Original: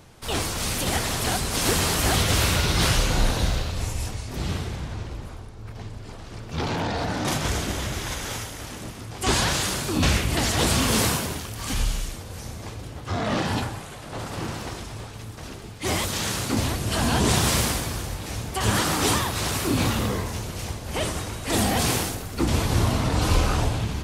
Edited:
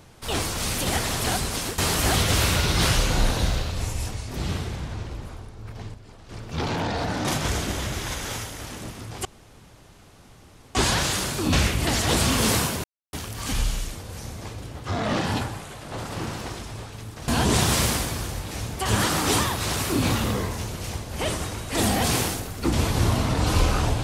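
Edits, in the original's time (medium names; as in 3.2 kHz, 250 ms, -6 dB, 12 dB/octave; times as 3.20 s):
1.45–1.78 s: fade out, to -16 dB
5.94–6.29 s: gain -7.5 dB
9.25 s: insert room tone 1.50 s
11.34 s: insert silence 0.29 s
15.49–17.03 s: delete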